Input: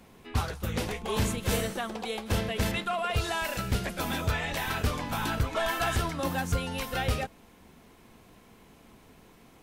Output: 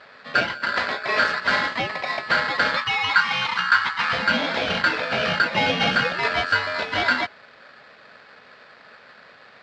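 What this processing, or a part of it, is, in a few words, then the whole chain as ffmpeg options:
ring modulator pedal into a guitar cabinet: -filter_complex "[0:a]aeval=exprs='val(0)*sgn(sin(2*PI*1500*n/s))':c=same,highpass=94,equalizer=f=230:t=q:w=4:g=6,equalizer=f=580:t=q:w=4:g=9,equalizer=f=1.2k:t=q:w=4:g=-3,lowpass=f=4.1k:w=0.5412,lowpass=f=4.1k:w=1.3066,asettb=1/sr,asplit=3[a][b][c];[a]atrim=end=2.774[d];[b]atrim=start=2.77:end=4.13,asetpts=PTS-STARTPTS,afade=t=in:d=0.004:c=qsin,afade=t=out:st=1.356:d=0.004:c=qsin,lowshelf=f=790:t=q:w=3:g=-9.5[e];[c]atrim=start=4.126[f];[d][e]acrossfade=d=0.004:c1=hsin:c2=qsin[g];[g][f]acrossfade=d=0.004:c1=qsin:c2=hsin,volume=8dB"

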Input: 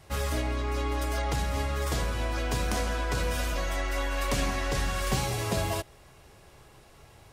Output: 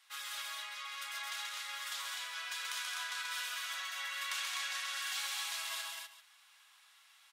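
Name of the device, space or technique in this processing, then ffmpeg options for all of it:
headphones lying on a table: -af "highpass=f=1.2k:w=0.5412,highpass=f=1.2k:w=1.3066,equalizer=f=3.5k:t=o:w=0.45:g=6.5,aecho=1:1:133|218|252|393:0.668|0.473|0.596|0.158,volume=-7.5dB"

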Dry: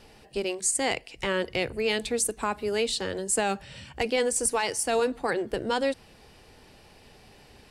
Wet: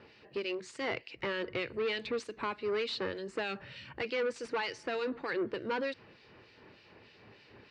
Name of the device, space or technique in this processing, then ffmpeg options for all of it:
guitar amplifier with harmonic tremolo: -filter_complex "[0:a]acrossover=split=2100[a][b];[a]aeval=exprs='val(0)*(1-0.7/2+0.7/2*cos(2*PI*3.3*n/s))':c=same[c];[b]aeval=exprs='val(0)*(1-0.7/2-0.7/2*cos(2*PI*3.3*n/s))':c=same[d];[c][d]amix=inputs=2:normalize=0,asoftclip=type=tanh:threshold=-28.5dB,highpass=100,equalizer=f=110:t=q:w=4:g=6,equalizer=f=340:t=q:w=4:g=4,equalizer=f=750:t=q:w=4:g=-9,equalizer=f=3.3k:t=q:w=4:g=-6,lowpass=f=4k:w=0.5412,lowpass=f=4k:w=1.3066,lowshelf=f=410:g=-7,volume=3.5dB"

